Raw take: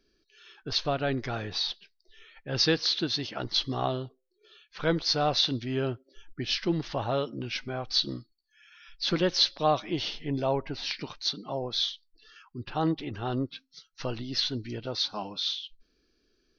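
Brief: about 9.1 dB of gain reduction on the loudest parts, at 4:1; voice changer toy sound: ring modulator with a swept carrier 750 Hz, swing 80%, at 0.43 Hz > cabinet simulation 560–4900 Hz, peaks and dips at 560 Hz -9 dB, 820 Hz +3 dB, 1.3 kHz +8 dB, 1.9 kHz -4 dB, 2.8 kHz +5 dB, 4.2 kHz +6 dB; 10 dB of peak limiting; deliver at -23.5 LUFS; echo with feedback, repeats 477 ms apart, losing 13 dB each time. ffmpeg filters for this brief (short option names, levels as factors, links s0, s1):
-af "acompressor=threshold=0.0282:ratio=4,alimiter=level_in=1.88:limit=0.0631:level=0:latency=1,volume=0.531,aecho=1:1:477|954|1431:0.224|0.0493|0.0108,aeval=exprs='val(0)*sin(2*PI*750*n/s+750*0.8/0.43*sin(2*PI*0.43*n/s))':c=same,highpass=560,equalizer=f=560:t=q:w=4:g=-9,equalizer=f=820:t=q:w=4:g=3,equalizer=f=1300:t=q:w=4:g=8,equalizer=f=1900:t=q:w=4:g=-4,equalizer=f=2800:t=q:w=4:g=5,equalizer=f=4200:t=q:w=4:g=6,lowpass=f=4900:w=0.5412,lowpass=f=4900:w=1.3066,volume=6.68"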